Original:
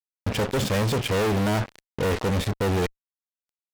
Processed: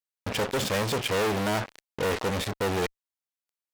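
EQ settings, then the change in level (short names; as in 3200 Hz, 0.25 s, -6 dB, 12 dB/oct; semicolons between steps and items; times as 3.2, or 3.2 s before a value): low shelf 250 Hz -10 dB; 0.0 dB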